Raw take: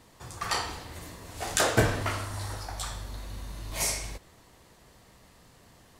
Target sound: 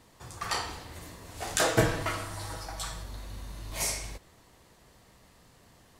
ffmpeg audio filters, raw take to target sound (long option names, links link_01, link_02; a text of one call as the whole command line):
ffmpeg -i in.wav -filter_complex "[0:a]asettb=1/sr,asplit=3[link_01][link_02][link_03];[link_01]atrim=end=1.604[link_04];[link_02]atrim=start=1.6:end=3.03,asetpts=PTS-STARTPTS,afade=type=in:duration=0.004:curve=qsin,afade=type=out:start_time=1.426:duration=0.004:curve=qsin,aecho=1:1:6.2:0.59,atrim=end_sample=63063[link_05];[link_03]atrim=start=3.026[link_06];[link_04][link_05]acrossfade=duration=0.004:curve1=hsin:curve2=qsin[link_07];[link_07][link_06]acrossfade=duration=0.004:curve1=qsin:curve2=hsin,volume=-2dB" out.wav